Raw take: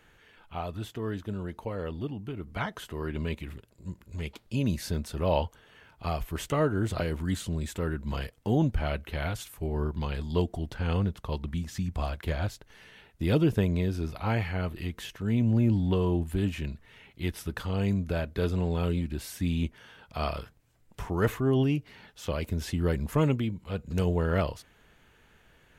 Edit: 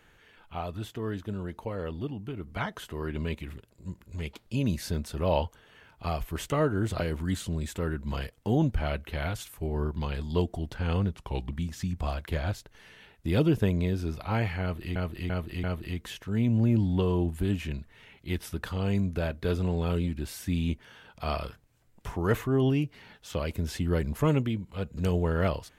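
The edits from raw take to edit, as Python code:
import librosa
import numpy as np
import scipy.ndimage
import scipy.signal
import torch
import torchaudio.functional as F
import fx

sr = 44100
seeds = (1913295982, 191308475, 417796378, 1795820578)

y = fx.edit(x, sr, fx.speed_span(start_s=11.12, length_s=0.34, speed=0.88),
    fx.repeat(start_s=14.57, length_s=0.34, count=4), tone=tone)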